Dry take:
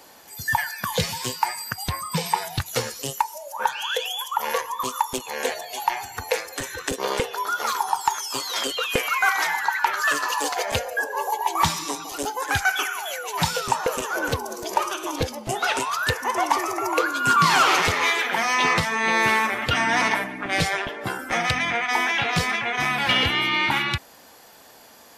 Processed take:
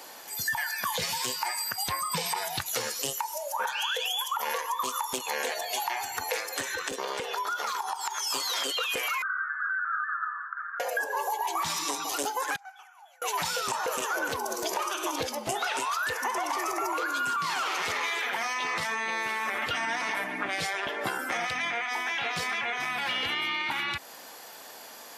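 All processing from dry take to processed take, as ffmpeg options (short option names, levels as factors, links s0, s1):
-filter_complex "[0:a]asettb=1/sr,asplit=3[s0][s1][s2];[s0]atrim=end=6.614[s3];[s1]atrim=start=6.61:end=8.27,asetpts=PTS-STARTPTS,afade=t=in:d=0.004:c=qsin,afade=t=out:st=1.656:d=0.004:c=qsin,equalizer=f=12000:t=o:w=0.92:g=-6,acompressor=threshold=0.0316:ratio=5:attack=3.2:release=140:knee=1:detection=peak[s4];[s2]atrim=start=8.266[s5];[s3][s4]acrossfade=d=0.004:c1=hsin:c2=qsin[s6];[s6][s5]acrossfade=d=0.004:c1=qsin:c2=hsin,asettb=1/sr,asplit=3[s7][s8][s9];[s7]atrim=end=9.224[s10];[s8]atrim=start=9.22:end=10.8,asetpts=PTS-STARTPTS,afade=t=in:d=0.004:c=qsin,afade=t=out:st=1.576:d=0.004:c=qsin,aeval=exprs='0.112*(abs(mod(val(0)/0.112+3,4)-2)-1)':c=same,asuperpass=centerf=1400:order=8:qfactor=3.2[s11];[s9]atrim=start=10.796[s12];[s10][s11]acrossfade=d=0.004:c1=hsin:c2=qsin[s13];[s13][s12]acrossfade=d=0.004:c1=qsin:c2=hsin,asettb=1/sr,asplit=3[s14][s15][s16];[s14]atrim=end=12.564[s17];[s15]atrim=start=12.56:end=13.22,asetpts=PTS-STARTPTS,afade=t=in:d=0.004:c=qsin,afade=t=out:st=0.656:d=0.004:c=qsin,bandpass=f=800:t=q:w=5.6,aderivative[s18];[s16]atrim=start=13.216[s19];[s17][s18]acrossfade=d=0.004:c1=hsin:c2=qsin[s20];[s20][s19]acrossfade=d=0.004:c1=qsin:c2=hsin,highpass=f=440:p=1,alimiter=limit=0.119:level=0:latency=1:release=26,acompressor=threshold=0.0282:ratio=6,volume=1.58"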